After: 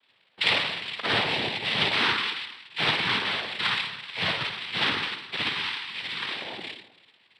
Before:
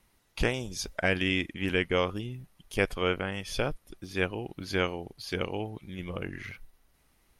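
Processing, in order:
spring reverb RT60 1 s, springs 52/58 ms, chirp 75 ms, DRR −5 dB
voice inversion scrambler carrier 2,500 Hz
cochlear-implant simulation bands 6
level −2 dB

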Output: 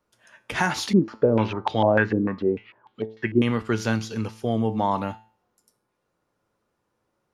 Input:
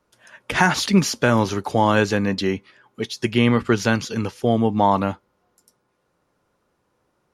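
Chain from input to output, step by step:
tuned comb filter 110 Hz, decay 0.43 s, harmonics all, mix 60%
0:00.93–0:03.42: low-pass on a step sequencer 6.7 Hz 330–3,600 Hz

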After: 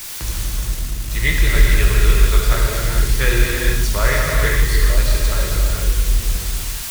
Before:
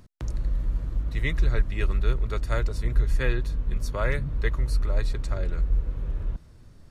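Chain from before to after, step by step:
0:02.53–0:03.02: amplitude modulation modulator 84 Hz, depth 70%
background noise white −43 dBFS
tilt shelving filter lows −4.5 dB, about 1,300 Hz
0:00.44–0:01.11: tube saturation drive 33 dB, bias 0.75
reverb whose tail is shaped and stops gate 490 ms flat, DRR −3 dB
highs frequency-modulated by the lows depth 0.23 ms
level +7.5 dB

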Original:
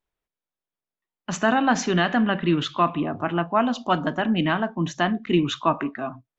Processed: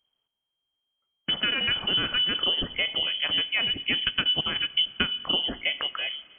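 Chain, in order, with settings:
flat-topped bell 650 Hz −11 dB 2.9 octaves
0:04.04–0:05.09: transient designer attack +12 dB, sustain −11 dB
downward compressor 6 to 1, threshold −31 dBFS, peak gain reduction 15.5 dB
on a send at −19.5 dB: convolution reverb RT60 3.4 s, pre-delay 40 ms
on the sum: voice inversion scrambler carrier 3,200 Hz
level +8 dB

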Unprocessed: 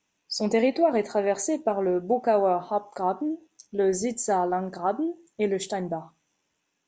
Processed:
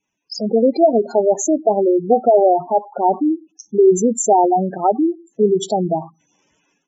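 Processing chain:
automatic gain control gain up to 16.5 dB
gate on every frequency bin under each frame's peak −10 dB strong

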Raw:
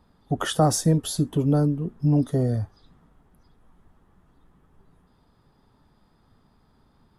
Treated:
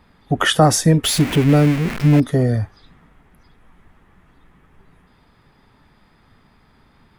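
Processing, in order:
0:01.04–0:02.20: converter with a step at zero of −29 dBFS
parametric band 2,200 Hz +12 dB 1 octave
level +6 dB

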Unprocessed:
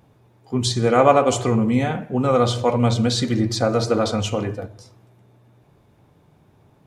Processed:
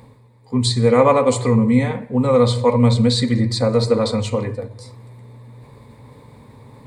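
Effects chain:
EQ curve with evenly spaced ripples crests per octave 0.97, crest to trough 12 dB
reversed playback
upward compression, threshold −30 dBFS
reversed playback
level −1 dB

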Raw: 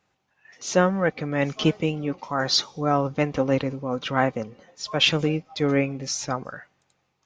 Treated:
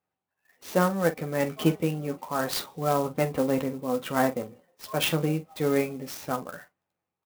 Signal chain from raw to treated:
high-pass filter 590 Hz 6 dB per octave
noise gate −49 dBFS, range −11 dB
spectral tilt −3.5 dB per octave
ambience of single reflections 12 ms −6.5 dB, 46 ms −13 dB
converter with an unsteady clock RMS 0.034 ms
level −2 dB

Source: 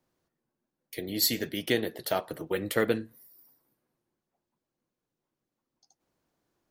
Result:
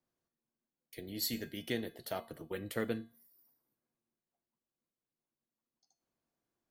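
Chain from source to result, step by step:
0:00.97–0:03.01: low-shelf EQ 100 Hz +10.5 dB
tuned comb filter 230 Hz, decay 0.42 s, harmonics odd, mix 70%
level −1 dB

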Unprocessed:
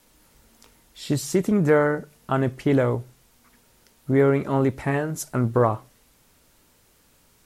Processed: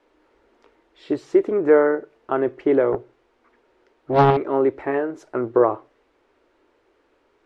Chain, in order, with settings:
low-pass filter 2,100 Hz 12 dB per octave
low shelf with overshoot 250 Hz −11.5 dB, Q 3
0:02.92–0:04.37: highs frequency-modulated by the lows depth 0.89 ms

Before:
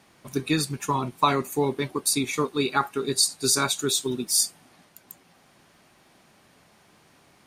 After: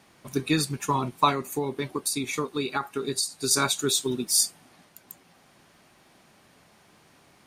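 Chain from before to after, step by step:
0:01.29–0:03.51: downward compressor 4 to 1, threshold −25 dBFS, peak gain reduction 8 dB

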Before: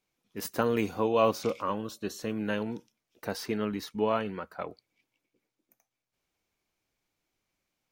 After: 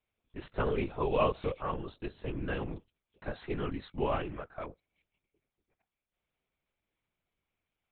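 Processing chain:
linear-prediction vocoder at 8 kHz whisper
level −3.5 dB

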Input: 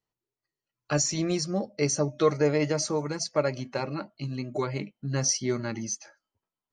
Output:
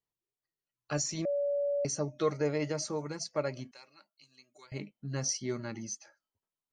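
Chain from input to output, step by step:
0:01.25–0:01.85: beep over 571 Hz −20.5 dBFS
0:03.71–0:04.72: first difference
level −7 dB

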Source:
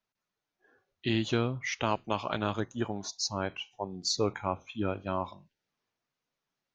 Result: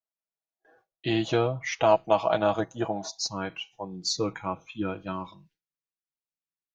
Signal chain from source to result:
noise gate with hold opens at −57 dBFS
parametric band 680 Hz +12.5 dB 0.75 octaves, from 0:03.26 −2.5 dB, from 0:05.12 −10.5 dB
comb filter 6.2 ms, depth 62%

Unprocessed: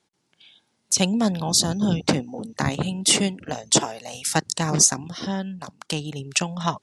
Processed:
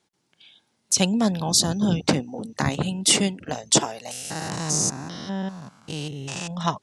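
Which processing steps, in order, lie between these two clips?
0:04.11–0:06.51: spectrum averaged block by block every 200 ms

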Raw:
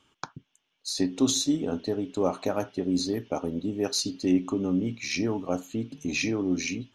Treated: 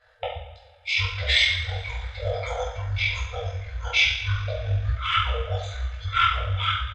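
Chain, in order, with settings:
coupled-rooms reverb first 0.66 s, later 2.5 s, from −18 dB, DRR −10 dB
brick-wall band-stop 190–840 Hz
pitch shifter −10.5 semitones

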